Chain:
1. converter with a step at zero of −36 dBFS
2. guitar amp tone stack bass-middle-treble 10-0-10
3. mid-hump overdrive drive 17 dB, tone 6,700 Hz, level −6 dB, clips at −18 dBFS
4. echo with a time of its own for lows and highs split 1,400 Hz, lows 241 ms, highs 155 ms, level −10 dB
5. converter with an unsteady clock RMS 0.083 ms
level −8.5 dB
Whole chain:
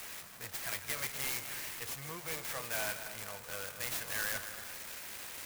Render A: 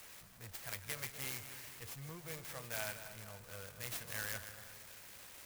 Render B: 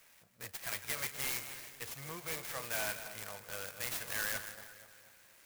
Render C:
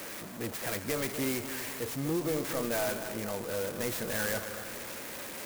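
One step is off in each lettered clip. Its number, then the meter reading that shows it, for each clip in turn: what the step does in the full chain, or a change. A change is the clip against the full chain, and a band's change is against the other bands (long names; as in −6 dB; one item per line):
3, 125 Hz band +8.0 dB
1, distortion level −16 dB
2, 250 Hz band +15.0 dB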